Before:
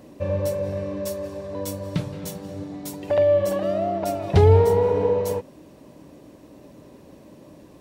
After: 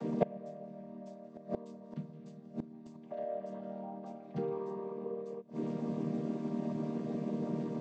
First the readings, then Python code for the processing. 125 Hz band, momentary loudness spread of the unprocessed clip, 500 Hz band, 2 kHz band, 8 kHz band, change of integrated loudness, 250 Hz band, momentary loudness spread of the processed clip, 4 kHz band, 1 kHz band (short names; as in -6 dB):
-19.0 dB, 17 LU, -17.5 dB, -18.5 dB, under -25 dB, -17.0 dB, -5.0 dB, 12 LU, under -20 dB, -15.5 dB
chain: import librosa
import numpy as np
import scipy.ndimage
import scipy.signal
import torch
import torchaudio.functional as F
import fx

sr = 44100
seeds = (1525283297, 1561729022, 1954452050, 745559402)

y = fx.chord_vocoder(x, sr, chord='major triad', root=51)
y = fx.gate_flip(y, sr, shuts_db=-26.0, range_db=-28)
y = y * librosa.db_to_amplitude(9.5)